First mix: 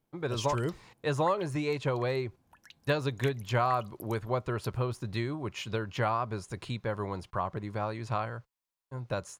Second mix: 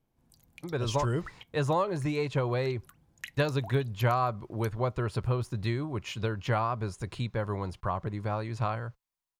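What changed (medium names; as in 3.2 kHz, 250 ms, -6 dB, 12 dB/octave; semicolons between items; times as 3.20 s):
speech: entry +0.50 s; master: add bass shelf 100 Hz +9 dB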